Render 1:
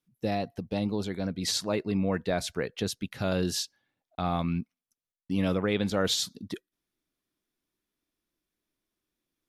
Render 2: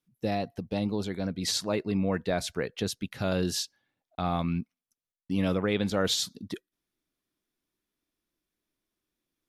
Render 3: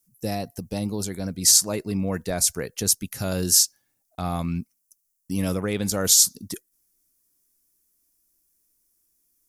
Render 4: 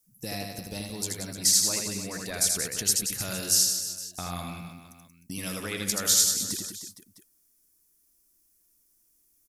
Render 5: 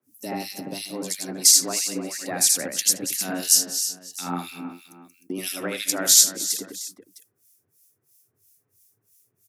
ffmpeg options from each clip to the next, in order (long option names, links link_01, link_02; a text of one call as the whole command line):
ffmpeg -i in.wav -af anull out.wav
ffmpeg -i in.wav -af "lowshelf=frequency=88:gain=9.5,aexciter=amount=11.6:drive=2.9:freq=5300" out.wav
ffmpeg -i in.wav -filter_complex "[0:a]acrossover=split=1400|4900[link_01][link_02][link_03];[link_01]acompressor=threshold=-38dB:ratio=4[link_04];[link_02]acompressor=threshold=-27dB:ratio=4[link_05];[link_03]acompressor=threshold=-23dB:ratio=4[link_06];[link_04][link_05][link_06]amix=inputs=3:normalize=0,aecho=1:1:80|180|305|461.2|656.6:0.631|0.398|0.251|0.158|0.1" out.wav
ffmpeg -i in.wav -filter_complex "[0:a]acrossover=split=1900[link_01][link_02];[link_01]aeval=exprs='val(0)*(1-1/2+1/2*cos(2*PI*3*n/s))':channel_layout=same[link_03];[link_02]aeval=exprs='val(0)*(1-1/2-1/2*cos(2*PI*3*n/s))':channel_layout=same[link_04];[link_03][link_04]amix=inputs=2:normalize=0,afreqshift=89,volume=8dB" out.wav